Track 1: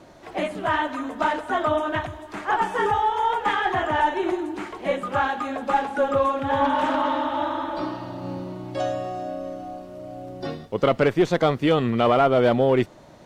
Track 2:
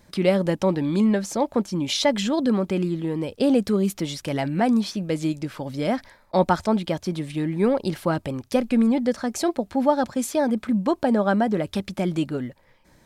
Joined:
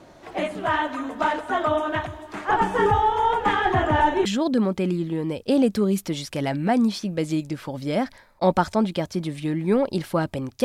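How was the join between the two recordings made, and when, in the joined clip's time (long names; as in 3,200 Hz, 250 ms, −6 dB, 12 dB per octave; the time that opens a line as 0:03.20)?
track 1
0:02.49–0:04.25: low-shelf EQ 300 Hz +12 dB
0:04.25: continue with track 2 from 0:02.17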